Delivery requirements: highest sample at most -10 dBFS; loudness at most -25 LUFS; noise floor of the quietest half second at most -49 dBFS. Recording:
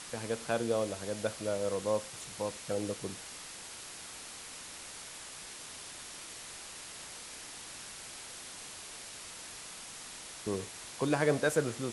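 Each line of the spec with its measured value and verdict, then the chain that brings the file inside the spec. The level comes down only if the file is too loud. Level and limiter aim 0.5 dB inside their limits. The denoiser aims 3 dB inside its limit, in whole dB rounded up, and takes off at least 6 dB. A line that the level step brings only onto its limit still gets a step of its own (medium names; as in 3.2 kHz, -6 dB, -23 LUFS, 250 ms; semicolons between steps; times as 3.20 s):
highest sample -15.5 dBFS: pass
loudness -37.5 LUFS: pass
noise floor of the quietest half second -47 dBFS: fail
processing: noise reduction 6 dB, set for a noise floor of -47 dBFS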